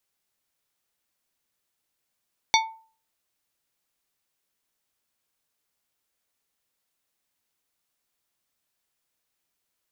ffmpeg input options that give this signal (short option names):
-f lavfi -i "aevalsrc='0.158*pow(10,-3*t/0.42)*sin(2*PI*892*t)+0.141*pow(10,-3*t/0.221)*sin(2*PI*2230*t)+0.126*pow(10,-3*t/0.159)*sin(2*PI*3568*t)+0.112*pow(10,-3*t/0.136)*sin(2*PI*4460*t)+0.1*pow(10,-3*t/0.113)*sin(2*PI*5798*t)':d=0.89:s=44100"